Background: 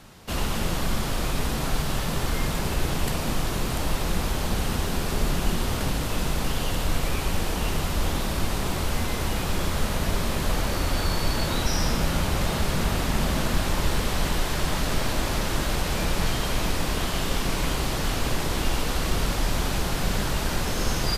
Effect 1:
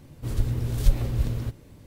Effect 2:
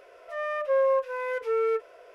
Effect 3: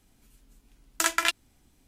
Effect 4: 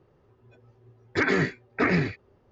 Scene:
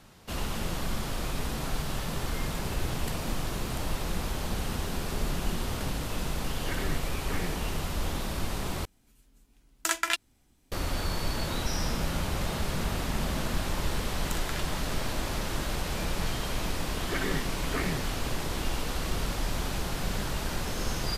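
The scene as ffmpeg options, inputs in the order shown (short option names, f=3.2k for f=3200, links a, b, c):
-filter_complex "[4:a]asplit=2[a][b];[3:a]asplit=2[c][d];[0:a]volume=-6dB[e];[d]acompressor=threshold=-36dB:ratio=6:attack=3.2:release=140:knee=1:detection=peak[f];[e]asplit=2[g][h];[g]atrim=end=8.854[i];[c]atrim=end=1.87,asetpts=PTS-STARTPTS,volume=-3dB[j];[h]atrim=start=10.716[k];[1:a]atrim=end=1.86,asetpts=PTS-STARTPTS,volume=-16dB,afade=t=in:d=0.004:c=hsin,afade=t=out:st=1.856:d=0.004:c=hsin,adelay=2440[l];[a]atrim=end=2.51,asetpts=PTS-STARTPTS,volume=-14.5dB,afade=t=in:d=0.004:c=hsin,afade=t=out:st=2.506:d=0.004:c=hsin,adelay=5500[m];[f]atrim=end=1.87,asetpts=PTS-STARTPTS,volume=-1dB,afade=t=in:d=0.004:c=hsin,afade=t=out:st=1.866:d=0.004:c=hsin,adelay=13310[n];[b]atrim=end=2.51,asetpts=PTS-STARTPTS,volume=-10dB,afade=t=in:d=0.004:c=hsin,afade=t=out:st=2.506:d=0.004:c=hsin,adelay=15940[o];[i][j]acrossfade=d=0.004:c1=hsin:c2=hsin[p];[p][k]acrossfade=d=0.004:c1=hsin:c2=hsin[q];[q][l][m][n][o]amix=inputs=5:normalize=0"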